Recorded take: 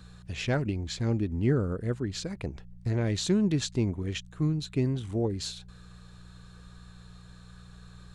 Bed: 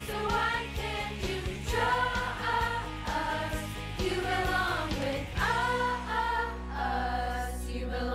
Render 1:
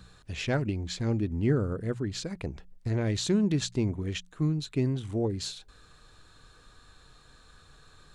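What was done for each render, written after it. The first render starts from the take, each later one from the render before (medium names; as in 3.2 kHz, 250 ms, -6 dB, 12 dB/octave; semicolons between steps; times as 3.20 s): de-hum 60 Hz, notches 3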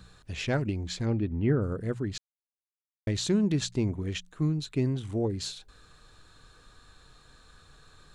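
1.05–1.61 s: low-pass 4.9 kHz -> 2.8 kHz 24 dB/octave; 2.18–3.07 s: mute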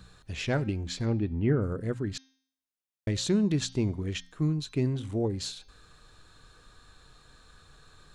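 de-hum 264.8 Hz, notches 24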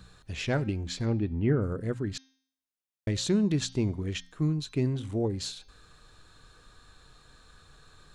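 no audible change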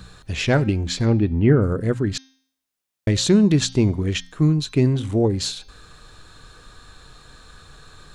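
trim +10 dB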